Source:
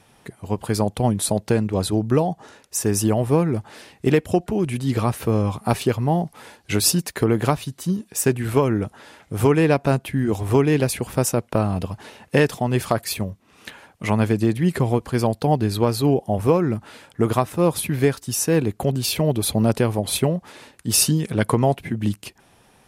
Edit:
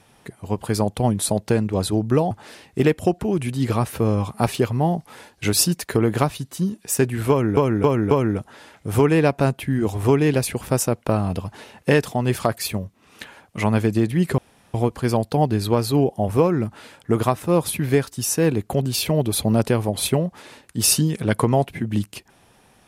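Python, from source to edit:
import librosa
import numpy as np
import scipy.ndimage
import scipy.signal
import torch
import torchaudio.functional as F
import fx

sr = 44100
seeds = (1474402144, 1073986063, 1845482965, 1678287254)

y = fx.edit(x, sr, fx.cut(start_s=2.31, length_s=1.27),
    fx.repeat(start_s=8.57, length_s=0.27, count=4),
    fx.insert_room_tone(at_s=14.84, length_s=0.36), tone=tone)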